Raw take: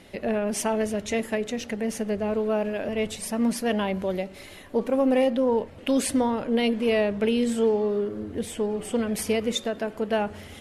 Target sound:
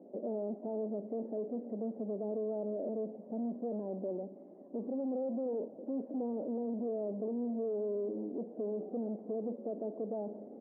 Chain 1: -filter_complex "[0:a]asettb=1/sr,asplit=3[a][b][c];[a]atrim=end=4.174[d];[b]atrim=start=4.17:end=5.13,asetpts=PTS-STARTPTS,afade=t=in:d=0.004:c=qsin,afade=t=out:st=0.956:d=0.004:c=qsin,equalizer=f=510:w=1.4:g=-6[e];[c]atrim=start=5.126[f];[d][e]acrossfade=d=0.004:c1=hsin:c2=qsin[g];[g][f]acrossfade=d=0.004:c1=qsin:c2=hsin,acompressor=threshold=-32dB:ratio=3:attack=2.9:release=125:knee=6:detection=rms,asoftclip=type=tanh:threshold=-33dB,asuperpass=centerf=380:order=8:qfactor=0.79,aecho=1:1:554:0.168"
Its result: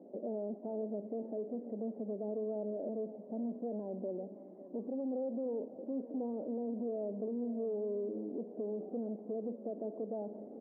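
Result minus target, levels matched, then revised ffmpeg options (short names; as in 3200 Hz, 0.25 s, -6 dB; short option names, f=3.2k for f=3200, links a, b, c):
compressor: peak gain reduction +7 dB; echo-to-direct +8.5 dB
-filter_complex "[0:a]asettb=1/sr,asplit=3[a][b][c];[a]atrim=end=4.174[d];[b]atrim=start=4.17:end=5.13,asetpts=PTS-STARTPTS,afade=t=in:d=0.004:c=qsin,afade=t=out:st=0.956:d=0.004:c=qsin,equalizer=f=510:w=1.4:g=-6[e];[c]atrim=start=5.126[f];[d][e]acrossfade=d=0.004:c1=hsin:c2=qsin[g];[g][f]acrossfade=d=0.004:c1=qsin:c2=hsin,acompressor=threshold=-21.5dB:ratio=3:attack=2.9:release=125:knee=6:detection=rms,asoftclip=type=tanh:threshold=-33dB,asuperpass=centerf=380:order=8:qfactor=0.79,aecho=1:1:554:0.0631"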